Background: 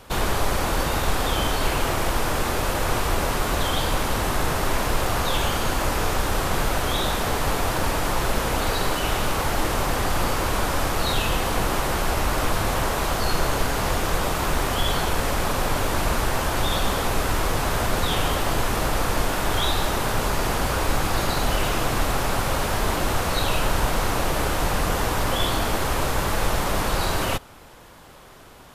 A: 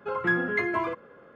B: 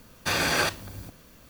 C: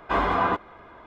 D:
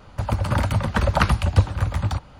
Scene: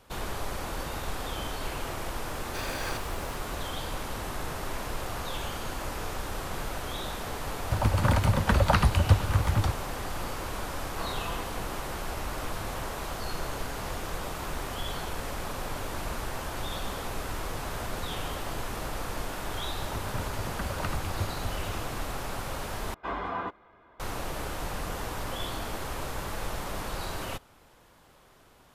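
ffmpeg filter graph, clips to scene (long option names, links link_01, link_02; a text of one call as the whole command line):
ffmpeg -i bed.wav -i cue0.wav -i cue1.wav -i cue2.wav -i cue3.wav -filter_complex "[4:a]asplit=2[link_01][link_02];[3:a]asplit=2[link_03][link_04];[0:a]volume=-11.5dB[link_05];[link_01]alimiter=limit=-6dB:level=0:latency=1:release=105[link_06];[link_05]asplit=2[link_07][link_08];[link_07]atrim=end=22.944[link_09];[link_04]atrim=end=1.06,asetpts=PTS-STARTPTS,volume=-10.5dB[link_10];[link_08]atrim=start=23.996[link_11];[2:a]atrim=end=1.49,asetpts=PTS-STARTPTS,volume=-12.5dB,afade=type=in:duration=0.004:curve=hsin,afade=type=out:start_time=1.486:duration=0.004:curve=hsin,adelay=2280[link_12];[link_06]atrim=end=2.39,asetpts=PTS-STARTPTS,volume=-2.5dB,afade=type=in:duration=0.004:curve=hsin,afade=type=out:start_time=2.386:duration=0.004:curve=hsin,adelay=7530[link_13];[link_03]atrim=end=1.06,asetpts=PTS-STARTPTS,volume=-16dB,afade=type=in:duration=0.004:curve=hsin,afade=type=out:start_time=1.056:duration=0.004:curve=hsin,adelay=10870[link_14];[link_02]atrim=end=2.39,asetpts=PTS-STARTPTS,volume=-16dB,afade=type=in:duration=0.004:curve=hsin,afade=type=out:start_time=2.386:duration=0.004:curve=hsin,adelay=19630[link_15];[link_09][link_10]acrossfade=duration=0.004:curve1=hsin:curve2=hsin[link_16];[link_16][link_11]acrossfade=duration=0.004:curve1=hsin:curve2=hsin[link_17];[link_17][link_12][link_13][link_14][link_15]amix=inputs=5:normalize=0" out.wav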